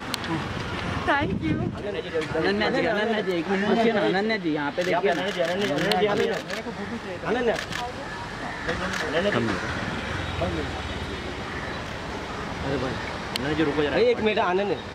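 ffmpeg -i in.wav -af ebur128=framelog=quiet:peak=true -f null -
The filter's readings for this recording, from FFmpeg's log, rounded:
Integrated loudness:
  I:         -25.8 LUFS
  Threshold: -35.8 LUFS
Loudness range:
  LRA:         6.3 LU
  Threshold: -45.9 LUFS
  LRA low:   -29.9 LUFS
  LRA high:  -23.6 LUFS
True peak:
  Peak:       -4.7 dBFS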